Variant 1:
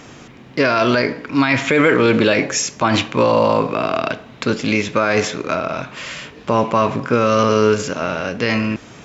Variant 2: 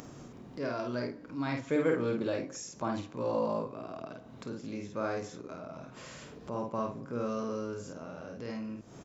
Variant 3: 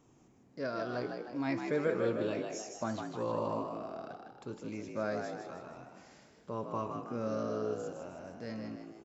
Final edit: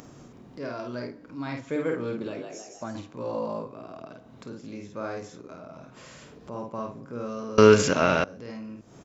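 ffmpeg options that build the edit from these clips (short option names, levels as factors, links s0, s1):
-filter_complex "[1:a]asplit=3[s0][s1][s2];[s0]atrim=end=2.282[s3];[2:a]atrim=start=2.278:end=2.952[s4];[s1]atrim=start=2.948:end=7.582[s5];[0:a]atrim=start=7.578:end=8.242[s6];[s2]atrim=start=8.238[s7];[s3][s4]acrossfade=d=0.004:c1=hsin:c2=hsin[s8];[s8][s5]acrossfade=d=0.004:c1=hsin:c2=hsin[s9];[s9][s6]acrossfade=d=0.004:c1=hsin:c2=hsin[s10];[s10][s7]acrossfade=d=0.004:c1=hsin:c2=hsin"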